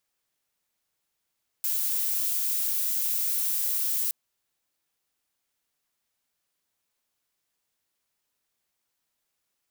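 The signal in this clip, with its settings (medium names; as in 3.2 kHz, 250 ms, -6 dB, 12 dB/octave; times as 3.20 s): noise violet, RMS -27 dBFS 2.47 s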